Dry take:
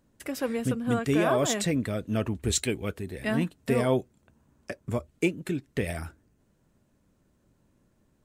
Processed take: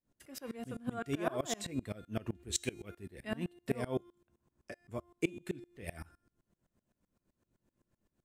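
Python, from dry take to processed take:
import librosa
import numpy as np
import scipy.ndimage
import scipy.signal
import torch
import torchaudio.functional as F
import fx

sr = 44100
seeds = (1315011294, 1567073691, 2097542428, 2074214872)

y = fx.comb_fb(x, sr, f0_hz=350.0, decay_s=0.51, harmonics='all', damping=0.0, mix_pct=70)
y = fx.tremolo_decay(y, sr, direction='swelling', hz=7.8, depth_db=25)
y = y * 10.0 ** (5.5 / 20.0)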